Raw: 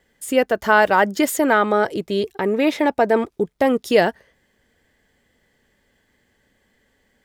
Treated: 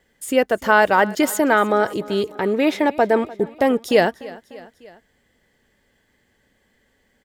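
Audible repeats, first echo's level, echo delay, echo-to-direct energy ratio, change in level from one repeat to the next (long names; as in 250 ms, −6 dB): 3, −20.0 dB, 298 ms, −18.5 dB, −4.5 dB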